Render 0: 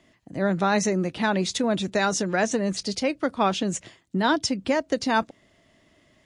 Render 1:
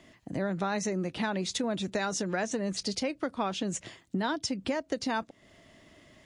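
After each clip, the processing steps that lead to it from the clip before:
downward compressor 3 to 1, threshold −35 dBFS, peak gain reduction 14 dB
level +3.5 dB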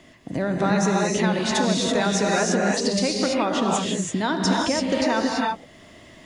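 reverb whose tail is shaped and stops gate 360 ms rising, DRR −2 dB
level +6 dB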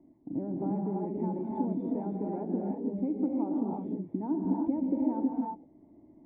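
formant resonators in series u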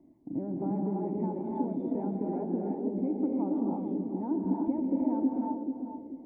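feedback echo with a band-pass in the loop 438 ms, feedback 44%, band-pass 370 Hz, level −5 dB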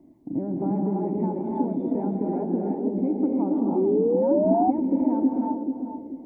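sound drawn into the spectrogram rise, 0:03.75–0:04.71, 360–770 Hz −28 dBFS
level +6 dB

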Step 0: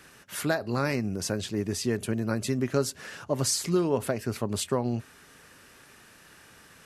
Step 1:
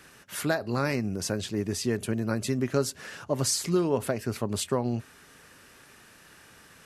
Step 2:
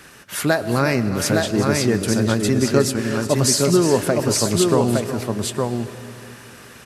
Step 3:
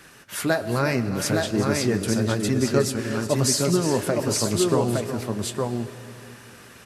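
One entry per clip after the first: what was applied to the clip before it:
no processing that can be heard
multi-tap delay 365/849/863 ms −11.5/−18/−3.5 dB; on a send at −13 dB: convolution reverb RT60 3.2 s, pre-delay 70 ms; on the sum: level +8.5 dB
flanger 0.82 Hz, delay 5.7 ms, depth 5.5 ms, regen −62%

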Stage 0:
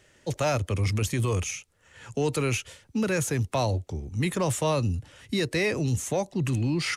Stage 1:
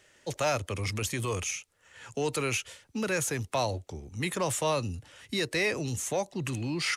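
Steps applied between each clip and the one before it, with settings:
low-shelf EQ 330 Hz −9.5 dB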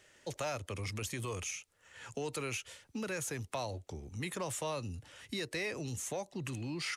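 downward compressor 2 to 1, threshold −38 dBFS, peak gain reduction 8 dB
level −2 dB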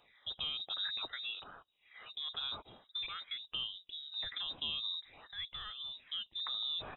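all-pass phaser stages 6, 0.48 Hz, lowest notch 110–2,000 Hz
voice inversion scrambler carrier 3,800 Hz

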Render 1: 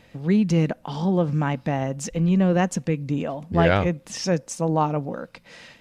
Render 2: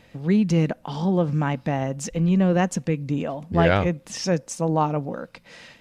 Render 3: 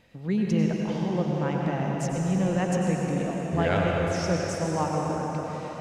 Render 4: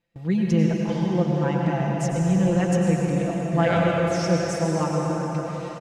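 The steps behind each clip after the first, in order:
no processing that can be heard
convolution reverb RT60 4.8 s, pre-delay 83 ms, DRR −2 dB; level −7 dB
comb filter 5.9 ms, depth 87%; noise gate with hold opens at −28 dBFS

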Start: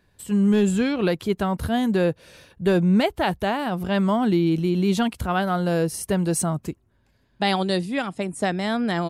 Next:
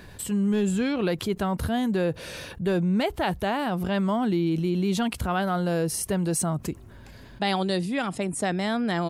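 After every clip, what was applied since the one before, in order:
envelope flattener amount 50%
level −6 dB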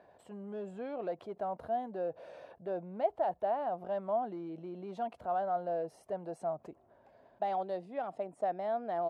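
hard clipping −18 dBFS, distortion −25 dB
resonant band-pass 670 Hz, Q 4.3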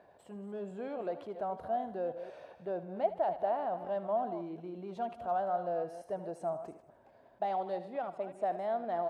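delay that plays each chunk backwards 177 ms, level −11.5 dB
feedback echo with a high-pass in the loop 77 ms, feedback 57%, level −13.5 dB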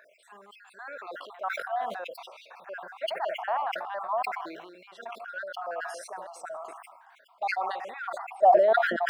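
time-frequency cells dropped at random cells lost 49%
high-pass filter sweep 1,200 Hz → 230 Hz, 0:08.20–0:08.99
level that may fall only so fast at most 41 dB per second
level +8.5 dB

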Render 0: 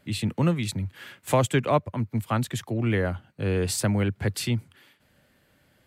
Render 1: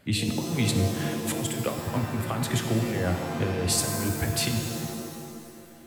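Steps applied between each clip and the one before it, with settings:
compressor whose output falls as the input rises −27 dBFS, ratio −0.5
reverb with rising layers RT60 1.9 s, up +7 semitones, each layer −2 dB, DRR 5 dB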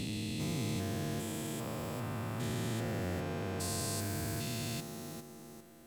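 spectrum averaged block by block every 400 ms
level −7.5 dB

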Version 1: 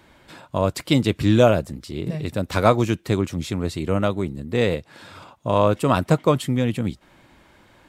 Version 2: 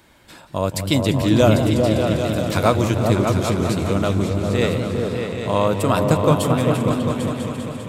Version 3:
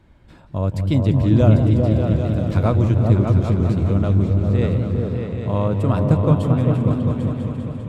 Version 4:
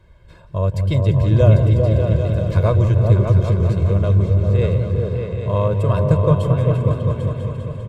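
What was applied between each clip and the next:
high-shelf EQ 5,500 Hz +9.5 dB; echo whose low-pass opens from repeat to repeat 199 ms, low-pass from 200 Hz, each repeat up 2 octaves, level 0 dB; feedback echo with a swinging delay time 173 ms, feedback 77%, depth 146 cents, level −13 dB; level −1 dB
RIAA equalisation playback; level −7 dB
comb filter 1.9 ms, depth 82%; level −1 dB

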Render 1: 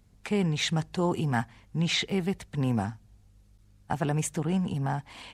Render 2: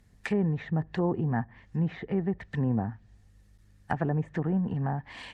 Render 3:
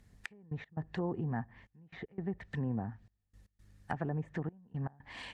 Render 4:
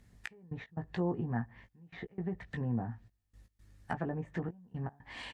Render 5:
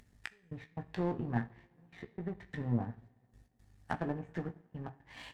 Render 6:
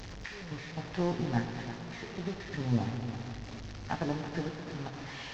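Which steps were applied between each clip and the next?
parametric band 1,800 Hz +13.5 dB 0.21 octaves; treble cut that deepens with the level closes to 770 Hz, closed at −24 dBFS
downward compressor 1.5 to 1, threshold −41 dBFS, peak gain reduction 7 dB; gate pattern "xx..x.xxxxx" 117 BPM −24 dB; level −1.5 dB
double-tracking delay 17 ms −6 dB
upward compression, threshold −48 dBFS; coupled-rooms reverb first 0.49 s, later 3.9 s, from −20 dB, DRR 7.5 dB; power curve on the samples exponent 1.4; level +2.5 dB
linear delta modulator 32 kbit/s, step −41 dBFS; echo machine with several playback heads 110 ms, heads all three, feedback 45%, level −14 dB; level +3 dB

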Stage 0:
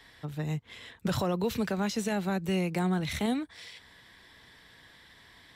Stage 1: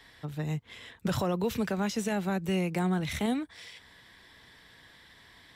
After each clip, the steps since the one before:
dynamic equaliser 4,200 Hz, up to −5 dB, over −59 dBFS, Q 6.9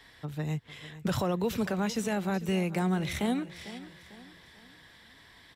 repeating echo 448 ms, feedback 41%, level −15.5 dB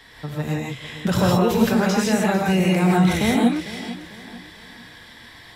reverb whose tail is shaped and stops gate 190 ms rising, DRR −3 dB
level +7 dB

